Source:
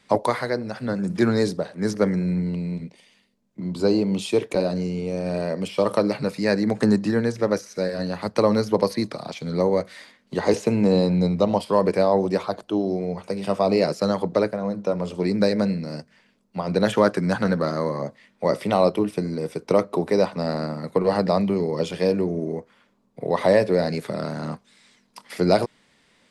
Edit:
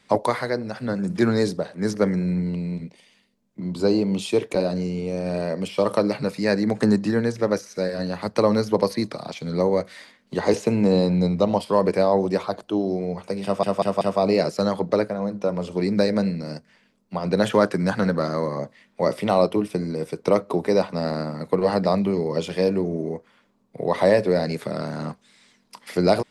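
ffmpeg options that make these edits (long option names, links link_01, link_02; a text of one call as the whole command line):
ffmpeg -i in.wav -filter_complex "[0:a]asplit=4[link_01][link_02][link_03][link_04];[link_01]atrim=end=13.632[link_05];[link_02]atrim=start=13.438:end=13.632[link_06];[link_03]atrim=start=13.438:end=13.632[link_07];[link_04]atrim=start=13.438[link_08];[link_05][link_06]acrossfade=duration=0.004:curve1=hsin:curve2=hsin[link_09];[link_09][link_07]acrossfade=duration=0.004:curve1=hsin:curve2=hsin[link_10];[link_10][link_08]acrossfade=duration=0.004:curve1=hsin:curve2=hsin" out.wav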